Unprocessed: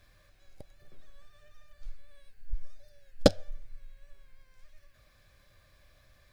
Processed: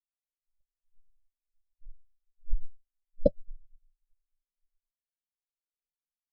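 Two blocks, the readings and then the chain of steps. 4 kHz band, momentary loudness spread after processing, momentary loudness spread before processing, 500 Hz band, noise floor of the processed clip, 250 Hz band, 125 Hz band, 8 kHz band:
below −25 dB, 12 LU, 20 LU, −2.0 dB, below −85 dBFS, −5.5 dB, −5.0 dB, below −30 dB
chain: every bin expanded away from the loudest bin 2.5 to 1

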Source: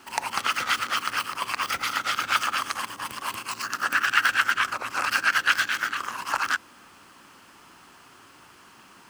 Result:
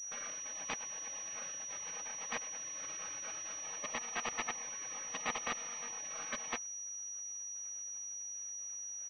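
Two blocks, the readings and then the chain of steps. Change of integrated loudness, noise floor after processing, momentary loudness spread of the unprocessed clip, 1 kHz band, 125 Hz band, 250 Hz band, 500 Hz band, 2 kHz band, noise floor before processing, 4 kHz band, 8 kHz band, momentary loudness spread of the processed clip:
−14.5 dB, −44 dBFS, 10 LU, −19.0 dB, −12.5 dB, −9.5 dB, −7.0 dB, −21.0 dB, −52 dBFS, −18.5 dB, +1.5 dB, 4 LU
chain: hearing-aid frequency compression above 1,600 Hz 1.5 to 1
automatic gain control gain up to 6.5 dB
phases set to zero 237 Hz
on a send: backwards echo 39 ms −18 dB
on the sum: output level in coarse steps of 20 dB
parametric band 500 Hz +6 dB 2.1 octaves
comb filter 1.3 ms, depth 91%
gate on every frequency bin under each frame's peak −25 dB weak
brickwall limiter −27 dBFS, peak gain reduction 10.5 dB
low-shelf EQ 170 Hz −12 dB
switching amplifier with a slow clock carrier 5,800 Hz
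level +7.5 dB

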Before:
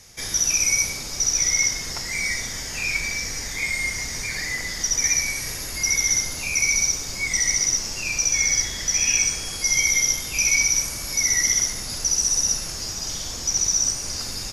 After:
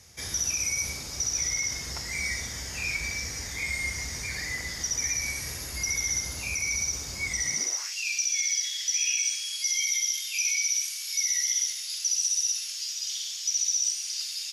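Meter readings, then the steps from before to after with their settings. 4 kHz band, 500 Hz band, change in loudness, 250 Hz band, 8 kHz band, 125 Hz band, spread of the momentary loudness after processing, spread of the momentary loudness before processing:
−5.0 dB, −8.5 dB, −6.5 dB, −8.0 dB, −6.5 dB, −4.5 dB, 8 LU, 9 LU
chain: brickwall limiter −14 dBFS, peak gain reduction 6 dB
high-pass filter sweep 64 Hz → 3,100 Hz, 0:07.42–0:07.96
level −5.5 dB

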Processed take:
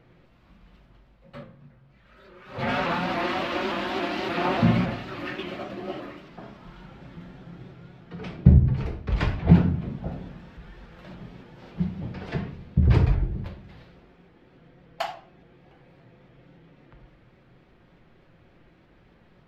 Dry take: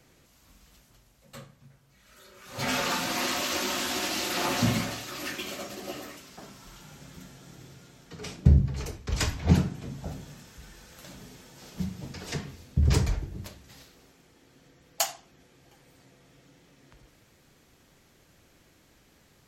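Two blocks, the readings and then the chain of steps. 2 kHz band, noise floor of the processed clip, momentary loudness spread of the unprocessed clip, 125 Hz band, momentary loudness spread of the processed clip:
+1.5 dB, −58 dBFS, 23 LU, +5.0 dB, 25 LU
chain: high-frequency loss of the air 400 metres
rectangular room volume 460 cubic metres, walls furnished, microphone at 0.92 metres
pitch modulation by a square or saw wave saw up 3.5 Hz, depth 100 cents
level +4.5 dB

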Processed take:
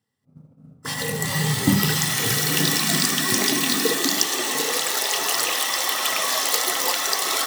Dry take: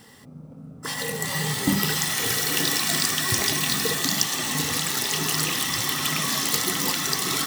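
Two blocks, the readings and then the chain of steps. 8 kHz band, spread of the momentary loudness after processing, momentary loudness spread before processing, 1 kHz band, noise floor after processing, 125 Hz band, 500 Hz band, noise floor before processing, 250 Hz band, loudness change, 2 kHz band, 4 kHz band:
+2.0 dB, 4 LU, 4 LU, +4.0 dB, −55 dBFS, +3.5 dB, +4.5 dB, −44 dBFS, +3.5 dB, +2.5 dB, +2.5 dB, +2.0 dB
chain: high-pass filter sweep 100 Hz → 580 Hz, 0:01.85–0:05.14
downward expander −29 dBFS
level +2 dB

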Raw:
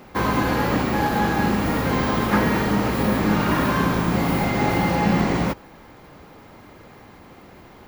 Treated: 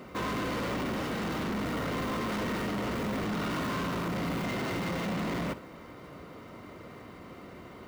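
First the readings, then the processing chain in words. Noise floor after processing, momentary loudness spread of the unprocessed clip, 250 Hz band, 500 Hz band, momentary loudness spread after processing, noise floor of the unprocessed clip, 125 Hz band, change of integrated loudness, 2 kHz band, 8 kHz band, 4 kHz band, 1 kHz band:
−48 dBFS, 2 LU, −11.5 dB, −10.5 dB, 15 LU, −46 dBFS, −12.5 dB, −11.5 dB, −11.0 dB, −8.5 dB, −7.5 dB, −12.5 dB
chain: running median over 5 samples
gain into a clipping stage and back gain 23.5 dB
notch comb filter 830 Hz
soft clipping −30 dBFS, distortion −11 dB
on a send: flutter between parallel walls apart 10.6 metres, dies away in 0.22 s

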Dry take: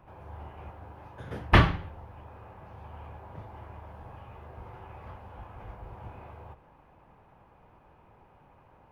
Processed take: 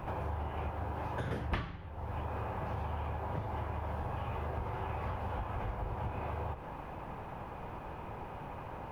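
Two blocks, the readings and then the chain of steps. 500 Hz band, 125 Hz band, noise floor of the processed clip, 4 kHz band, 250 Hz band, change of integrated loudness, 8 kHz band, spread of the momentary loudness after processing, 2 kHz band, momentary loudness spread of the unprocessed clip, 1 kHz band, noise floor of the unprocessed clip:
−0.5 dB, −4.0 dB, −45 dBFS, −13.0 dB, −6.0 dB, −13.5 dB, can't be measured, 7 LU, −10.5 dB, 24 LU, −1.5 dB, −59 dBFS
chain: downward compressor 12 to 1, threshold −48 dBFS, peak gain reduction 34.5 dB
level +14.5 dB

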